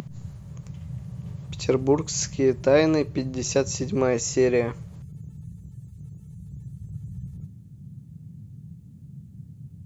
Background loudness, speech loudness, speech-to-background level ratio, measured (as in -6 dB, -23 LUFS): -39.5 LUFS, -23.5 LUFS, 16.0 dB